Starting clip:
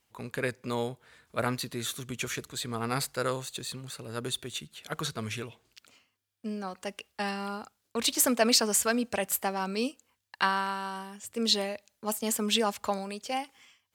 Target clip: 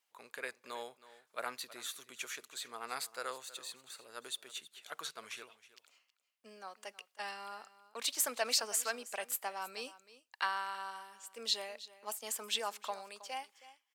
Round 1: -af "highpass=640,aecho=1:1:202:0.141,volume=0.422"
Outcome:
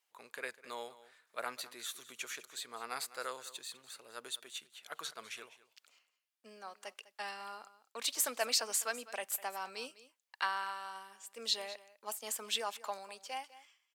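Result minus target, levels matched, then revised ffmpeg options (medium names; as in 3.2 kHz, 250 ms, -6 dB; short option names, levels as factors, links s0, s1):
echo 117 ms early
-af "highpass=640,aecho=1:1:319:0.141,volume=0.422"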